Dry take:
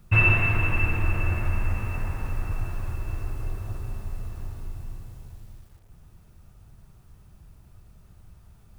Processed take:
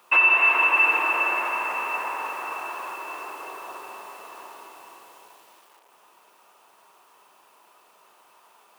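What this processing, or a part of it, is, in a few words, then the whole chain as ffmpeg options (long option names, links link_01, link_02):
laptop speaker: -af "highpass=frequency=410:width=0.5412,highpass=frequency=410:width=1.3066,equalizer=frequency=1000:width_type=o:width=0.57:gain=12,equalizer=frequency=2800:width_type=o:width=0.56:gain=6.5,alimiter=limit=-15dB:level=0:latency=1:release=304,volume=5.5dB"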